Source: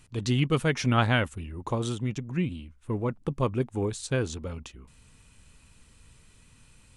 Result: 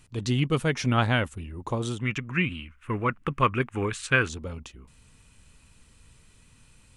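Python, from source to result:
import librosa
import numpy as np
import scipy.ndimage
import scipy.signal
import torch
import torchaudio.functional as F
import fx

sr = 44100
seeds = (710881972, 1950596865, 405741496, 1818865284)

y = fx.band_shelf(x, sr, hz=1800.0, db=14.5, octaves=1.7, at=(2.0, 4.29))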